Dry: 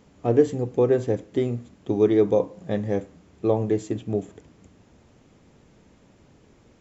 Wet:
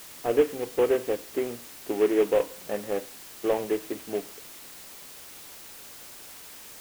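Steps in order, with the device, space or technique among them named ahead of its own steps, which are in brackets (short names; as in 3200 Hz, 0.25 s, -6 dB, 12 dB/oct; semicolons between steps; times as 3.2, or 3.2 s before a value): army field radio (BPF 400–2900 Hz; CVSD 16 kbps; white noise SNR 16 dB)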